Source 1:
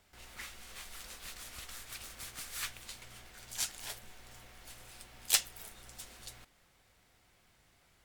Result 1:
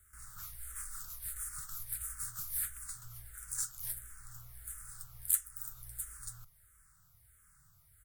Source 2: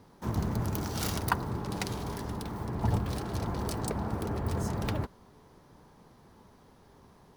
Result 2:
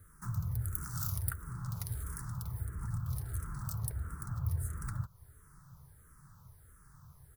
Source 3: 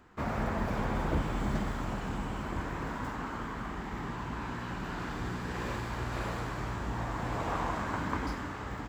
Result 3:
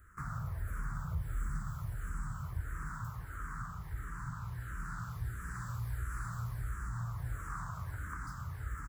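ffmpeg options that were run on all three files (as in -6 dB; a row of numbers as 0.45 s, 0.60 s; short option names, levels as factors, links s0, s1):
-filter_complex "[0:a]acompressor=threshold=0.0112:ratio=2.5,firequalizer=gain_entry='entry(140,0);entry(220,-22);entry(810,-22);entry(1300,-2);entry(2600,-23);entry(9000,5)':delay=0.05:min_phase=1,asplit=2[s0][s1];[s1]afreqshift=-1.5[s2];[s0][s2]amix=inputs=2:normalize=1,volume=2.51"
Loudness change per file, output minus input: 0.0 LU, -5.0 LU, -6.0 LU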